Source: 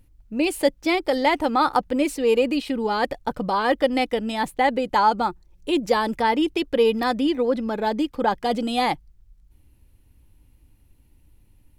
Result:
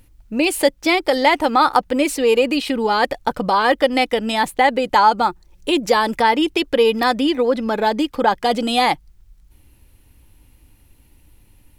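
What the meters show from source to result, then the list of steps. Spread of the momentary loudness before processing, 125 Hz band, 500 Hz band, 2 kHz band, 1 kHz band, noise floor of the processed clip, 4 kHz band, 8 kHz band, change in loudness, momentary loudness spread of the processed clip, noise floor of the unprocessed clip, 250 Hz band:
5 LU, no reading, +4.0 dB, +7.0 dB, +5.5 dB, -53 dBFS, +7.5 dB, +8.5 dB, +5.0 dB, 5 LU, -57 dBFS, +3.0 dB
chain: bass shelf 450 Hz -7 dB; in parallel at +1 dB: compression, threshold -30 dBFS, peak gain reduction 14.5 dB; on the sum: trim +4.5 dB

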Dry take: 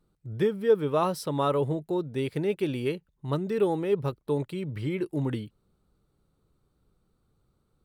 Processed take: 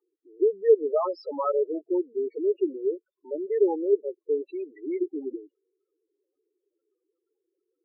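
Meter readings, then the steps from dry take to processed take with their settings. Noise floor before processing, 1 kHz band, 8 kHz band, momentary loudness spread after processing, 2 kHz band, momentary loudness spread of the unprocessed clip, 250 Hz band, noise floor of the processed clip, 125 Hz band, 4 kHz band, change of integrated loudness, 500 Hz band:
-73 dBFS, -3.0 dB, no reading, 13 LU, under -10 dB, 8 LU, -1.5 dB, -84 dBFS, under -40 dB, under -15 dB, +1.5 dB, +3.0 dB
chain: elliptic band-pass 340–4900 Hz, stop band 40 dB; loudest bins only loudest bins 4; trim +4 dB

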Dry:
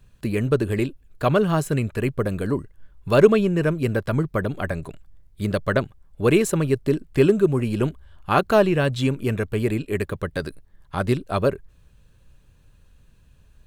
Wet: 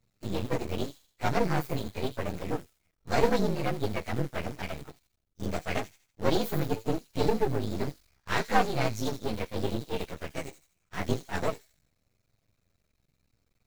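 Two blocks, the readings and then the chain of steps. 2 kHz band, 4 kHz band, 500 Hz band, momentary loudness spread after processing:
-7.0 dB, -3.0 dB, -10.5 dB, 12 LU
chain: frequency axis rescaled in octaves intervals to 119%; high-pass 130 Hz 6 dB/octave; in parallel at -7 dB: word length cut 6-bit, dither none; on the sum: flange 0.81 Hz, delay 8.2 ms, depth 6.6 ms, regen -48%; on a send: feedback echo behind a high-pass 81 ms, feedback 42%, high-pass 5.1 kHz, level -5 dB; on the sum: half-wave rectifier

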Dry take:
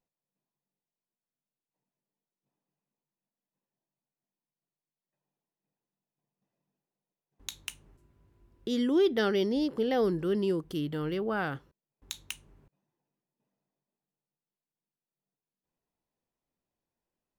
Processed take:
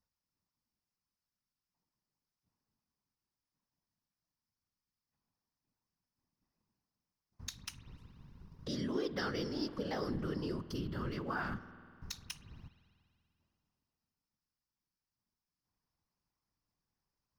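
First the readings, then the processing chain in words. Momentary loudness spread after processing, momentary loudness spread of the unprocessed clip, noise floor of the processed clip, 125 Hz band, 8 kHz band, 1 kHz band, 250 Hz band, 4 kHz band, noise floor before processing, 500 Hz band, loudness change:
20 LU, 18 LU, under -85 dBFS, -3.0 dB, -4.5 dB, -6.0 dB, -9.5 dB, -6.0 dB, under -85 dBFS, -12.5 dB, -10.5 dB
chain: FFT filter 130 Hz 0 dB, 220 Hz -10 dB, 610 Hz -14 dB, 1.1 kHz -2 dB, 3.5 kHz -11 dB, 5.2 kHz +4 dB, 7.5 kHz -13 dB, 14 kHz -10 dB; compression 2:1, threshold -56 dBFS, peak gain reduction 12.5 dB; waveshaping leveller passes 1; whisper effect; spring tank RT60 2.4 s, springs 49 ms, chirp 20 ms, DRR 13.5 dB; trim +7.5 dB

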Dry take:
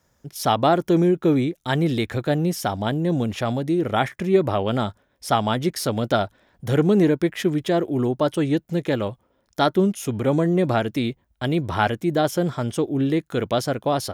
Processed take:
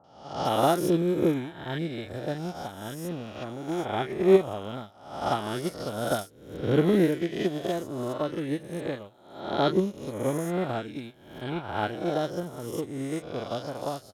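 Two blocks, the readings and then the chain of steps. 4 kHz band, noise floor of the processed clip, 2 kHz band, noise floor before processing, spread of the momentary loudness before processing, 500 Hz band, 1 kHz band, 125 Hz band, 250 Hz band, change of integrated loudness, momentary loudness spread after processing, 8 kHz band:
-7.0 dB, -52 dBFS, -7.5 dB, -67 dBFS, 7 LU, -5.0 dB, -6.5 dB, -9.0 dB, -7.5 dB, -6.5 dB, 14 LU, -7.5 dB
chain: reverse spectral sustain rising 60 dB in 1.70 s; three bands offset in time lows, mids, highs 40/450 ms, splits 1.3/5.5 kHz; upward expansion 2.5:1, over -29 dBFS; trim -1.5 dB

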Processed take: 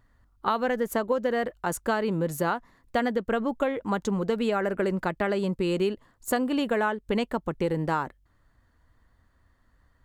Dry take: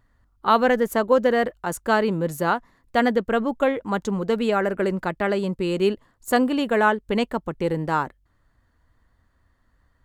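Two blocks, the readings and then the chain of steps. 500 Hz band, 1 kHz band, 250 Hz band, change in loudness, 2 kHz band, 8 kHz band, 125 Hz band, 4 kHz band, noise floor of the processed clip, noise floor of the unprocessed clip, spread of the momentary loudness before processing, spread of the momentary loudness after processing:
-5.0 dB, -6.0 dB, -4.0 dB, -5.0 dB, -6.0 dB, -1.0 dB, -2.5 dB, -5.0 dB, -66 dBFS, -66 dBFS, 7 LU, 4 LU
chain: compression 6:1, threshold -22 dBFS, peak gain reduction 10.5 dB

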